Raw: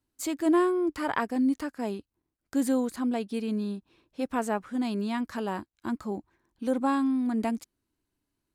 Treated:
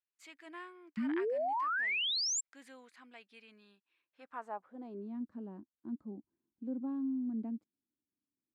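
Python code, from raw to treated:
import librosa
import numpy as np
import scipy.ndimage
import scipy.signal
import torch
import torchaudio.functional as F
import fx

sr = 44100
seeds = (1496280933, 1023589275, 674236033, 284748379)

y = fx.filter_sweep_bandpass(x, sr, from_hz=2200.0, to_hz=240.0, start_s=4.05, end_s=5.2, q=2.0)
y = fx.spec_paint(y, sr, seeds[0], shape='rise', start_s=0.97, length_s=1.44, low_hz=210.0, high_hz=7700.0, level_db=-25.0)
y = y * 10.0 ** (-8.5 / 20.0)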